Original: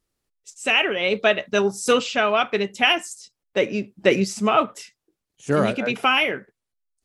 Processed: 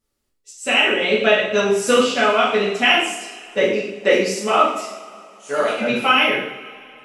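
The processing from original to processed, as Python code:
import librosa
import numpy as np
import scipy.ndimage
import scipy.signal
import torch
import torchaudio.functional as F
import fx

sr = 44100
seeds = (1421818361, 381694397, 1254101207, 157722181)

y = fx.highpass(x, sr, hz=fx.line((3.64, 230.0), (5.79, 640.0)), slope=12, at=(3.64, 5.79), fade=0.02)
y = fx.rev_double_slope(y, sr, seeds[0], early_s=0.65, late_s=3.0, knee_db=-20, drr_db=-6.5)
y = F.gain(torch.from_numpy(y), -3.5).numpy()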